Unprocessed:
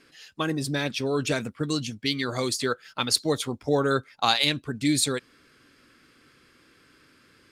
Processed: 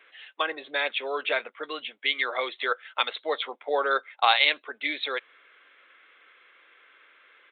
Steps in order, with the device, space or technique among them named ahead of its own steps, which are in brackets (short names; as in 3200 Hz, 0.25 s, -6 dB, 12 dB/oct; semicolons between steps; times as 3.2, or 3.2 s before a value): musical greeting card (downsampling 8000 Hz; HPF 530 Hz 24 dB/oct; bell 2100 Hz +6 dB 0.21 oct); gain +3 dB